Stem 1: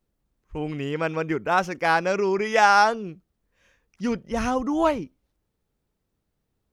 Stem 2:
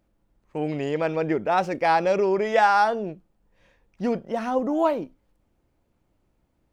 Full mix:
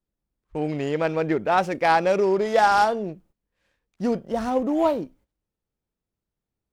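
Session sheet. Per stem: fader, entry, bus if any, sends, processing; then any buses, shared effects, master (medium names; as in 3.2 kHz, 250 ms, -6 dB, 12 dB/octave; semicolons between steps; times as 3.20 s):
-10.0 dB, 0.00 s, no send, delay time shaken by noise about 1.4 kHz, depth 0.041 ms
-1.0 dB, 0.00 s, no send, gate -54 dBFS, range -25 dB; treble shelf 5.6 kHz +5.5 dB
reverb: none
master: none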